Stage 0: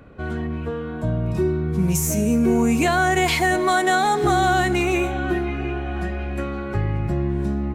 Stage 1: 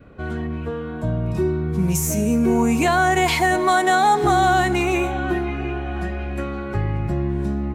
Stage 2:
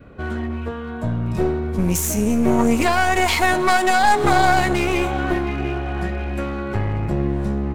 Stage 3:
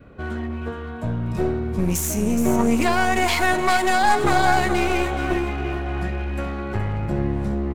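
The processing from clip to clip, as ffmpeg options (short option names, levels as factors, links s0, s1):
-af "adynamicequalizer=threshold=0.0158:dfrequency=910:dqfactor=2.9:tfrequency=910:tqfactor=2.9:attack=5:release=100:ratio=0.375:range=3:mode=boostabove:tftype=bell"
-af "bandreject=f=155.8:t=h:w=4,bandreject=f=311.6:t=h:w=4,bandreject=f=467.4:t=h:w=4,bandreject=f=623.2:t=h:w=4,bandreject=f=779:t=h:w=4,aeval=exprs='clip(val(0),-1,0.0596)':c=same,aeval=exprs='0.398*(cos(1*acos(clip(val(0)/0.398,-1,1)))-cos(1*PI/2))+0.0447*(cos(3*acos(clip(val(0)/0.398,-1,1)))-cos(3*PI/2))':c=same,volume=2"
-af "aecho=1:1:421:0.335,volume=0.75"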